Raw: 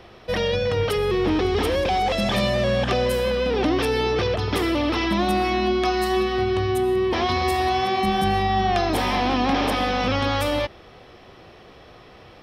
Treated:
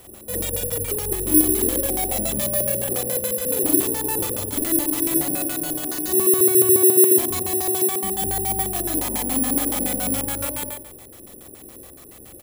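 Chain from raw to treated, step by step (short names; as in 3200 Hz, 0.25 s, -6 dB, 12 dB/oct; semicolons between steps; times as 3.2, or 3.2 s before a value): 4.55–6.08 minimum comb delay 7 ms; doubler 42 ms -2 dB; in parallel at +1 dB: compressor, threshold -34 dBFS, peak gain reduction 18.5 dB; on the sum: low shelf 82 Hz -6.5 dB; on a send: flutter echo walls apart 7.8 m, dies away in 0.69 s; on the sum: LFO low-pass square 7.1 Hz 370–5400 Hz; 1.59–2.47 companded quantiser 6-bit; careless resampling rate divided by 4×, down filtered, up zero stuff; low shelf 300 Hz +8 dB; gain -14 dB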